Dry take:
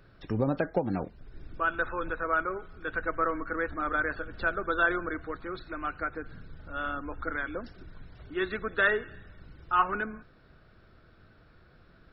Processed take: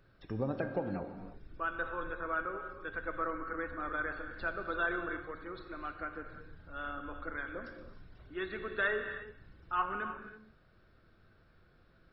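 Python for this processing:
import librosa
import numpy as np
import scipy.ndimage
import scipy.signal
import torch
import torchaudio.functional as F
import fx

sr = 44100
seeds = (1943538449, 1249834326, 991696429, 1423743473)

y = fx.comb_fb(x, sr, f0_hz=530.0, decay_s=0.52, harmonics='all', damping=0.0, mix_pct=60)
y = fx.rev_gated(y, sr, seeds[0], gate_ms=360, shape='flat', drr_db=6.5)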